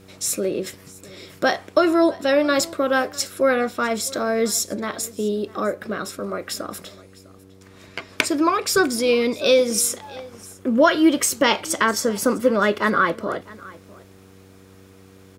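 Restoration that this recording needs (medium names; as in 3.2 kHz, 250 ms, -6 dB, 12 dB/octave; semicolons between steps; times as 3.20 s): de-hum 95.3 Hz, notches 5; inverse comb 653 ms -21.5 dB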